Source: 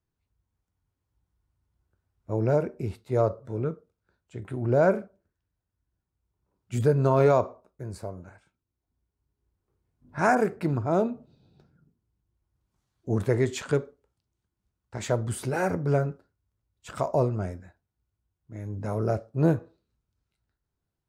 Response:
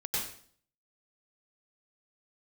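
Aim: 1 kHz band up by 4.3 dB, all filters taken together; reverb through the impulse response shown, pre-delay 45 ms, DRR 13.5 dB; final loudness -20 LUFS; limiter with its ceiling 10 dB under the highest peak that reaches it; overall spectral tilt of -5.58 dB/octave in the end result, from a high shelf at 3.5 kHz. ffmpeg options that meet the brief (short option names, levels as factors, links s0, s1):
-filter_complex "[0:a]equalizer=f=1000:t=o:g=6.5,highshelf=f=3500:g=-5,alimiter=limit=0.15:level=0:latency=1,asplit=2[s0][s1];[1:a]atrim=start_sample=2205,adelay=45[s2];[s1][s2]afir=irnorm=-1:irlink=0,volume=0.119[s3];[s0][s3]amix=inputs=2:normalize=0,volume=2.99"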